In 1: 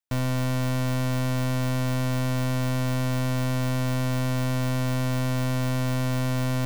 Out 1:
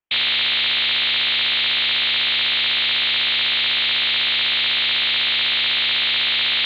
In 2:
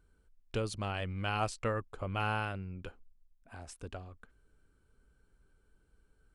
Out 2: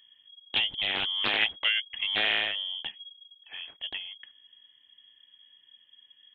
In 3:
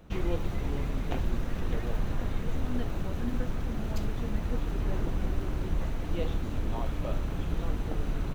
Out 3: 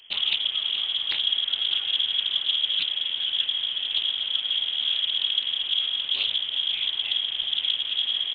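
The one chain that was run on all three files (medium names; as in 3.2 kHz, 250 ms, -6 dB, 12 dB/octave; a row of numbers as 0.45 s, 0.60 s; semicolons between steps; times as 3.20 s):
frequency inversion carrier 3.3 kHz; loudspeaker Doppler distortion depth 0.37 ms; peak normalisation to -12 dBFS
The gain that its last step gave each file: +5.0 dB, +6.5 dB, +0.5 dB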